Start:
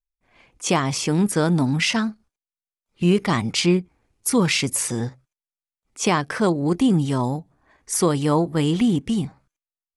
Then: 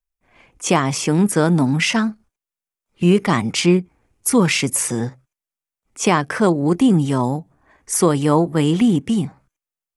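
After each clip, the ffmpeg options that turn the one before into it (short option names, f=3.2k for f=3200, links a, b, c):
-filter_complex "[0:a]equalizer=f=4.2k:w=1.8:g=-5.5,acrossover=split=100[a][b];[a]acompressor=threshold=-49dB:ratio=6[c];[c][b]amix=inputs=2:normalize=0,volume=4dB"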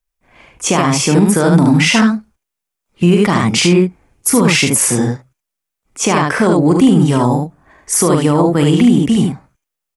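-filter_complex "[0:a]asplit=2[a][b];[b]aecho=0:1:41|74:0.376|0.668[c];[a][c]amix=inputs=2:normalize=0,alimiter=level_in=7dB:limit=-1dB:release=50:level=0:latency=1,volume=-1dB"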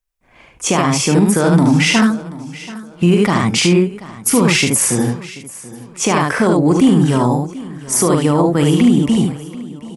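-af "aecho=1:1:733|1466|2199:0.126|0.0378|0.0113,volume=-1.5dB"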